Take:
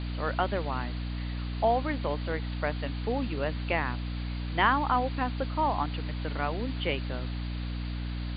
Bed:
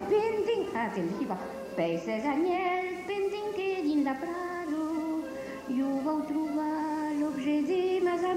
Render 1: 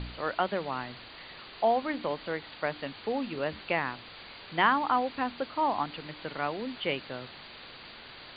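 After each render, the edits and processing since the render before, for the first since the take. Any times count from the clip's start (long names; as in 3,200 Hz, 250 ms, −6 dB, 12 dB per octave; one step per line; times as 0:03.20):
hum removal 60 Hz, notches 5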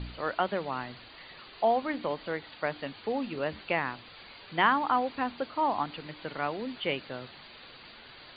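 broadband denoise 6 dB, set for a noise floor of −48 dBFS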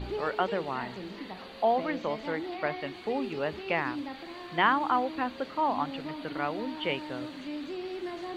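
mix in bed −9.5 dB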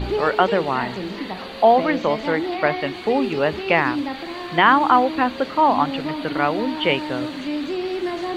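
level +11.5 dB
brickwall limiter −2 dBFS, peak gain reduction 3 dB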